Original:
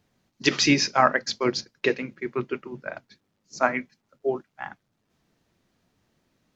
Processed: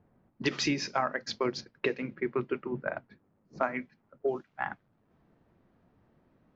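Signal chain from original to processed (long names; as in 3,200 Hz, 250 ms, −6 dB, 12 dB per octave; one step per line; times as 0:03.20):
low-pass that shuts in the quiet parts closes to 1,200 Hz, open at −18.5 dBFS
high-shelf EQ 3,300 Hz −8 dB, from 0:04.28 +6 dB
downward compressor 5 to 1, threshold −32 dBFS, peak gain reduction 17 dB
level +4.5 dB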